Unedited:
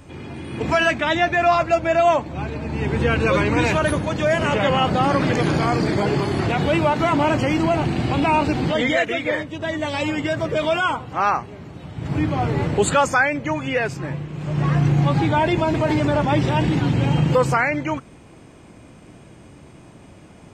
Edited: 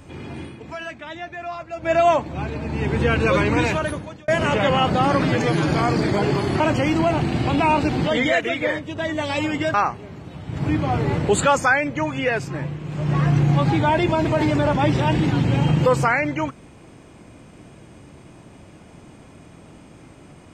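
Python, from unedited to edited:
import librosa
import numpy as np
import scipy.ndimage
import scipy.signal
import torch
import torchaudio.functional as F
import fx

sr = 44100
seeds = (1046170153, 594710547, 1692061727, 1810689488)

y = fx.edit(x, sr, fx.fade_down_up(start_s=0.43, length_s=1.48, db=-14.5, fade_s=0.2, curve='qua'),
    fx.fade_out_span(start_s=3.54, length_s=0.74),
    fx.stretch_span(start_s=5.24, length_s=0.32, factor=1.5),
    fx.cut(start_s=6.44, length_s=0.8),
    fx.cut(start_s=10.38, length_s=0.85), tone=tone)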